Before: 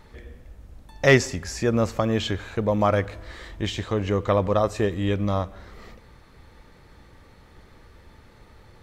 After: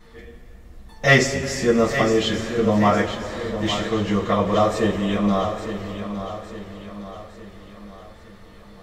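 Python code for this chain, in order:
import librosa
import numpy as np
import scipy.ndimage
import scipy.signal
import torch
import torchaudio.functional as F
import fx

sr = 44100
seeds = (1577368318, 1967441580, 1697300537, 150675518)

p1 = x + fx.echo_feedback(x, sr, ms=861, feedback_pct=48, wet_db=-10, dry=0)
p2 = fx.rev_double_slope(p1, sr, seeds[0], early_s=0.21, late_s=4.0, knee_db=-22, drr_db=-9.0)
y = F.gain(torch.from_numpy(p2), -6.0).numpy()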